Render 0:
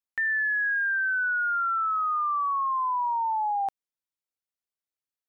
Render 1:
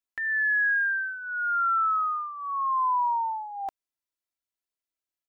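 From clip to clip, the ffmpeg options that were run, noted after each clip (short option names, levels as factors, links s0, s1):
-af "aecho=1:1:3:0.69,volume=0.794"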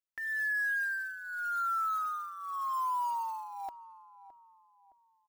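-filter_complex "[0:a]acrusher=bits=5:mode=log:mix=0:aa=0.000001,asplit=2[s0][s1];[s1]adelay=615,lowpass=f=1100:p=1,volume=0.2,asplit=2[s2][s3];[s3]adelay=615,lowpass=f=1100:p=1,volume=0.44,asplit=2[s4][s5];[s5]adelay=615,lowpass=f=1100:p=1,volume=0.44,asplit=2[s6][s7];[s7]adelay=615,lowpass=f=1100:p=1,volume=0.44[s8];[s0][s2][s4][s6][s8]amix=inputs=5:normalize=0,volume=0.422"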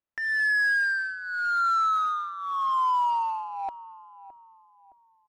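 -af "adynamicsmooth=sensitivity=7.5:basefreq=2000,volume=2.66"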